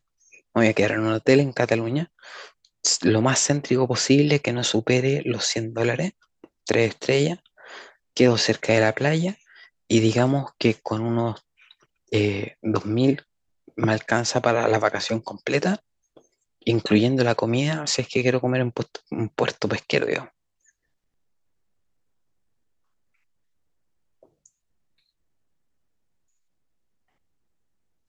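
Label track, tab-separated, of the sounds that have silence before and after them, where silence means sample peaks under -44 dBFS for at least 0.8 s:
24.230000	24.460000	sound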